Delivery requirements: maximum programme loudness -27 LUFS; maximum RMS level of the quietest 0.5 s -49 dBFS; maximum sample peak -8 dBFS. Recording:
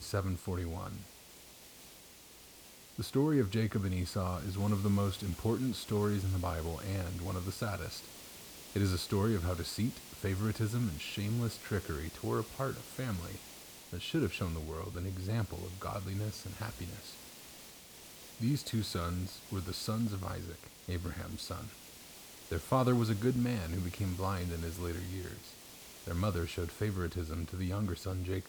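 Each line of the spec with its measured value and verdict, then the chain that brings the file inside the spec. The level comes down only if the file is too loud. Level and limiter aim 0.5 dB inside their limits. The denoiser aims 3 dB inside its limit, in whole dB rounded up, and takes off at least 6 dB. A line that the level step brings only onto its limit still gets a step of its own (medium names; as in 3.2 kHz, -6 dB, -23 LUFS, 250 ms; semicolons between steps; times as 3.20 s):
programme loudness -36.0 LUFS: pass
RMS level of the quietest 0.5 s -55 dBFS: pass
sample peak -17.0 dBFS: pass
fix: none needed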